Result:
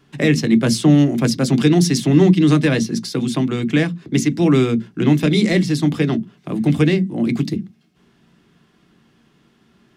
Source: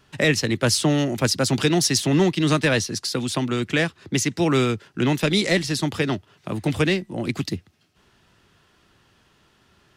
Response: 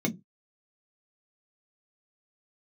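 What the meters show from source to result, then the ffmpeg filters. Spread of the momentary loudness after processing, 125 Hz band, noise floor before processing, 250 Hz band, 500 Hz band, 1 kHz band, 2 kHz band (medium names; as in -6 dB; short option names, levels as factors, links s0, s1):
8 LU, +7.0 dB, -61 dBFS, +8.0 dB, +3.0 dB, -0.5 dB, -1.0 dB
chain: -filter_complex "[0:a]asplit=2[s0][s1];[1:a]atrim=start_sample=2205,lowpass=5800[s2];[s1][s2]afir=irnorm=-1:irlink=0,volume=0.251[s3];[s0][s3]amix=inputs=2:normalize=0,volume=0.75"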